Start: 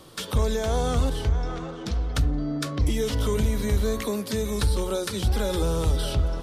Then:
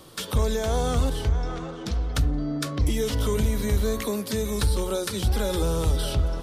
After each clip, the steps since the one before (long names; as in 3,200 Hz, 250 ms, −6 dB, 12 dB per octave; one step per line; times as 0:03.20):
high-shelf EQ 11,000 Hz +5.5 dB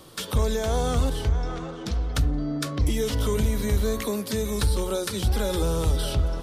no processing that can be heard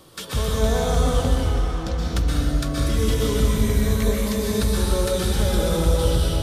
dense smooth reverb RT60 1.9 s, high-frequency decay 0.9×, pre-delay 110 ms, DRR −4 dB
level −1.5 dB